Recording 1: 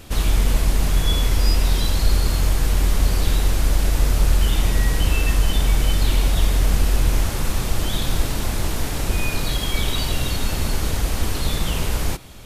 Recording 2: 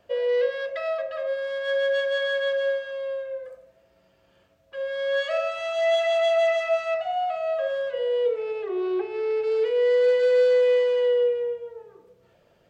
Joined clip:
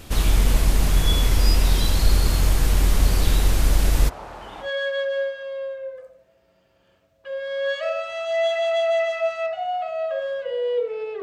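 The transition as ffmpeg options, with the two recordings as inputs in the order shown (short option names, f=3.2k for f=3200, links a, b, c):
-filter_complex "[0:a]asplit=3[a][b][c];[a]afade=t=out:st=4.08:d=0.02[d];[b]bandpass=f=840:t=q:w=2:csg=0,afade=t=in:st=4.08:d=0.02,afade=t=out:st=4.72:d=0.02[e];[c]afade=t=in:st=4.72:d=0.02[f];[d][e][f]amix=inputs=3:normalize=0,apad=whole_dur=11.22,atrim=end=11.22,atrim=end=4.72,asetpts=PTS-STARTPTS[g];[1:a]atrim=start=2.08:end=8.7,asetpts=PTS-STARTPTS[h];[g][h]acrossfade=d=0.12:c1=tri:c2=tri"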